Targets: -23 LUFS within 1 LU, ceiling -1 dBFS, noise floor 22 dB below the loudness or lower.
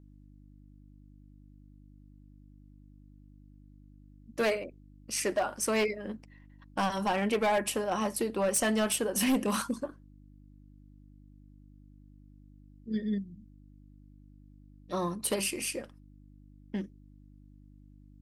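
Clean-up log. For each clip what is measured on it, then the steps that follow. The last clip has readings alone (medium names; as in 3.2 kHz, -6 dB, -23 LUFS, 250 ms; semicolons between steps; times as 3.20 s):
clipped samples 0.7%; clipping level -22.5 dBFS; hum 50 Hz; highest harmonic 300 Hz; hum level -53 dBFS; loudness -31.0 LUFS; peak level -22.5 dBFS; loudness target -23.0 LUFS
-> clip repair -22.5 dBFS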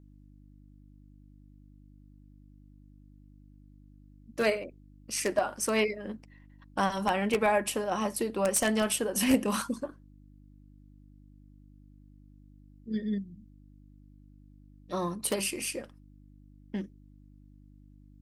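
clipped samples 0.0%; hum 50 Hz; highest harmonic 300 Hz; hum level -53 dBFS
-> de-hum 50 Hz, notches 6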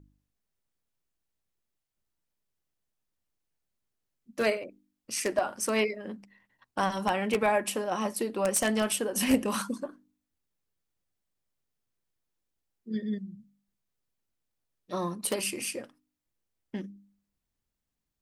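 hum not found; loudness -30.0 LUFS; peak level -13.0 dBFS; loudness target -23.0 LUFS
-> trim +7 dB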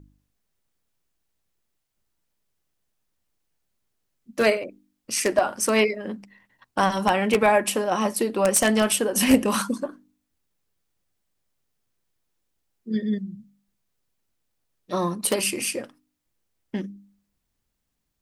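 loudness -23.0 LUFS; peak level -6.0 dBFS; noise floor -77 dBFS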